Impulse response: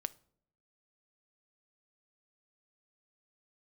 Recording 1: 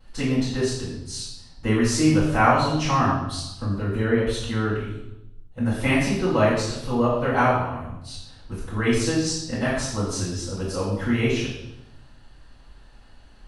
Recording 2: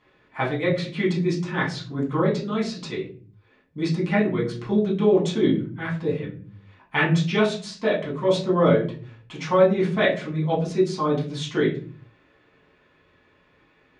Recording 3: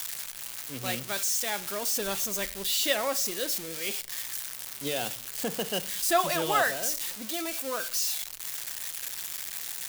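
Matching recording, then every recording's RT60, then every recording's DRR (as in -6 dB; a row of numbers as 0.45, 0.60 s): 3; 0.90 s, 0.40 s, not exponential; -12.5, -6.5, 14.5 dB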